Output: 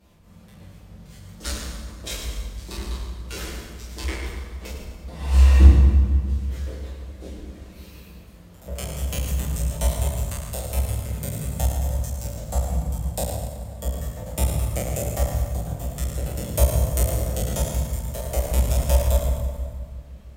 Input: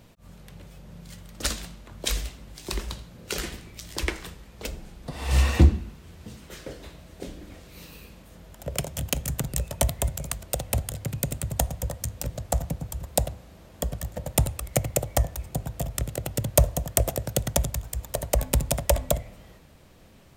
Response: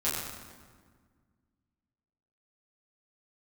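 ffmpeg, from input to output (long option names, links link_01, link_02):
-filter_complex "[1:a]atrim=start_sample=2205,asetrate=37044,aresample=44100[link_01];[0:a][link_01]afir=irnorm=-1:irlink=0,volume=-10.5dB"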